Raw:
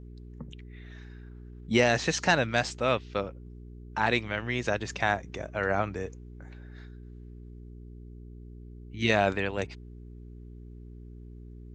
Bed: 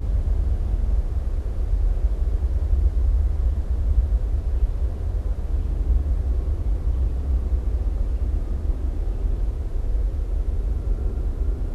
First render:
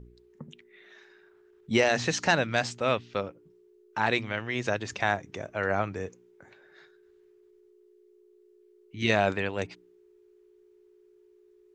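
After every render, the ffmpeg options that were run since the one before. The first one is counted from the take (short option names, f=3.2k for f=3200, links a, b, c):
-af "bandreject=f=60:t=h:w=4,bandreject=f=120:t=h:w=4,bandreject=f=180:t=h:w=4,bandreject=f=240:t=h:w=4,bandreject=f=300:t=h:w=4"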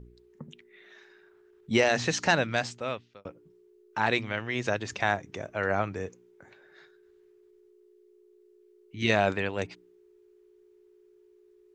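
-filter_complex "[0:a]asplit=2[a][b];[a]atrim=end=3.25,asetpts=PTS-STARTPTS,afade=t=out:st=2.45:d=0.8[c];[b]atrim=start=3.25,asetpts=PTS-STARTPTS,afade=t=in:d=0.004:c=hsin[d];[c][d]concat=n=2:v=0:a=1"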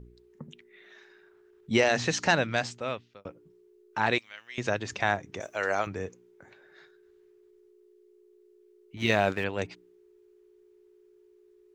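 -filter_complex "[0:a]asettb=1/sr,asplit=3[a][b][c];[a]atrim=end=4.184[d];[b]atrim=start=4.18:end=4.58,asetpts=PTS-STARTPTS,afade=t=in:d=0.004:c=qsin,afade=t=out:st=0.396:d=0.004:c=qsin,aderivative[e];[c]atrim=start=4.576[f];[d][e]acrossfade=d=0.004:c1=hsin:c2=qsin[g];[g][f]acrossfade=d=0.004:c1=qsin:c2=hsin,asettb=1/sr,asplit=3[h][i][j];[h]atrim=end=5.404[k];[i]atrim=start=5.4:end=5.87,asetpts=PTS-STARTPTS,afade=t=in:d=0.004:c=qsin,afade=t=out:st=0.466:d=0.004:c=qsin,bass=f=250:g=-13,treble=f=4k:g=15[l];[j]atrim=start=5.866[m];[k][l]acrossfade=d=0.004:c1=hsin:c2=qsin[n];[n][m]acrossfade=d=0.004:c1=qsin:c2=hsin,asettb=1/sr,asplit=3[o][p][q];[o]atrim=end=8.974[r];[p]atrim=start=8.97:end=9.44,asetpts=PTS-STARTPTS,afade=t=in:d=0.004:c=qsin,afade=t=out:st=0.466:d=0.004:c=qsin,aeval=exprs='sgn(val(0))*max(abs(val(0))-0.00501,0)':c=same[s];[q]atrim=start=9.436[t];[r][s]acrossfade=d=0.004:c1=hsin:c2=qsin[u];[u][t]acrossfade=d=0.004:c1=qsin:c2=hsin"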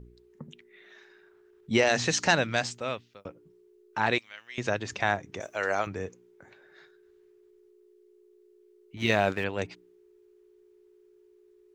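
-filter_complex "[0:a]asettb=1/sr,asplit=3[a][b][c];[a]atrim=end=1.874[d];[b]atrim=start=1.87:end=3.27,asetpts=PTS-STARTPTS,afade=t=in:d=0.004:c=qsin,afade=t=out:st=1.396:d=0.004:c=qsin,highshelf=f=5.2k:g=7[e];[c]atrim=start=3.266[f];[d][e]acrossfade=d=0.004:c1=hsin:c2=qsin[g];[g][f]acrossfade=d=0.004:c1=qsin:c2=hsin"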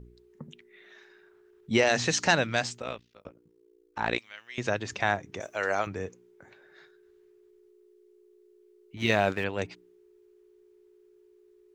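-filter_complex "[0:a]asettb=1/sr,asplit=3[a][b][c];[a]atrim=end=2.824[d];[b]atrim=start=2.82:end=4.18,asetpts=PTS-STARTPTS,afade=t=in:d=0.004:c=qsin,afade=t=out:st=1.356:d=0.004:c=qsin,tremolo=f=58:d=0.919[e];[c]atrim=start=4.176[f];[d][e]acrossfade=d=0.004:c1=hsin:c2=qsin[g];[g][f]acrossfade=d=0.004:c1=qsin:c2=hsin"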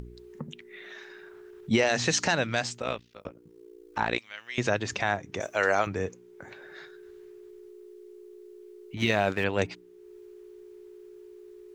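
-filter_complex "[0:a]asplit=2[a][b];[b]acompressor=mode=upward:threshold=-38dB:ratio=2.5,volume=-2dB[c];[a][c]amix=inputs=2:normalize=0,alimiter=limit=-11.5dB:level=0:latency=1:release=325"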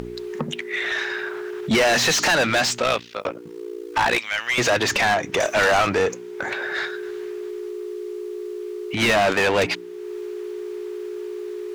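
-filter_complex "[0:a]asplit=2[a][b];[b]highpass=f=720:p=1,volume=28dB,asoftclip=type=tanh:threshold=-11dB[c];[a][c]amix=inputs=2:normalize=0,lowpass=f=4.3k:p=1,volume=-6dB,asplit=2[d][e];[e]asoftclip=type=tanh:threshold=-29dB,volume=-12dB[f];[d][f]amix=inputs=2:normalize=0"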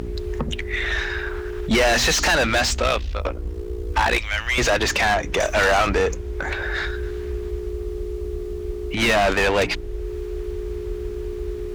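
-filter_complex "[1:a]volume=-8dB[a];[0:a][a]amix=inputs=2:normalize=0"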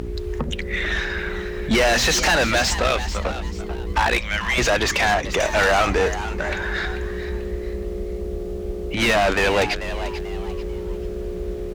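-filter_complex "[0:a]asplit=4[a][b][c][d];[b]adelay=440,afreqshift=140,volume=-12dB[e];[c]adelay=880,afreqshift=280,volume=-21.4dB[f];[d]adelay=1320,afreqshift=420,volume=-30.7dB[g];[a][e][f][g]amix=inputs=4:normalize=0"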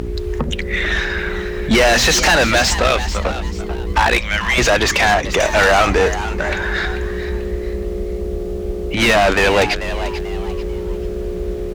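-af "volume=5dB"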